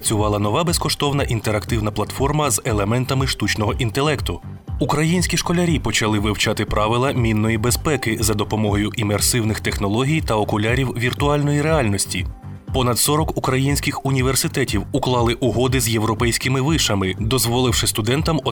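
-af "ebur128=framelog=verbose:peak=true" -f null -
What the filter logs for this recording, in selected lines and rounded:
Integrated loudness:
  I:         -19.0 LUFS
  Threshold: -29.1 LUFS
Loudness range:
  LRA:         1.4 LU
  Threshold: -39.2 LUFS
  LRA low:   -19.9 LUFS
  LRA high:  -18.4 LUFS
True peak:
  Peak:       -4.7 dBFS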